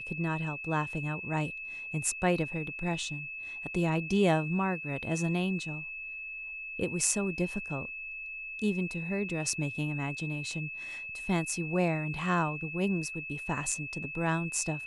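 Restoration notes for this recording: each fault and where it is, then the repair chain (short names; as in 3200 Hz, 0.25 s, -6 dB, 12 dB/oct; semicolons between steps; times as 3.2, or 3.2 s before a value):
tone 2600 Hz -38 dBFS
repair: notch 2600 Hz, Q 30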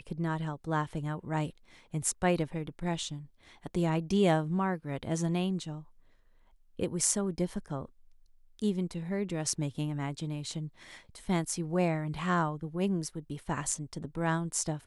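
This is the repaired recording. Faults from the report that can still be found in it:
none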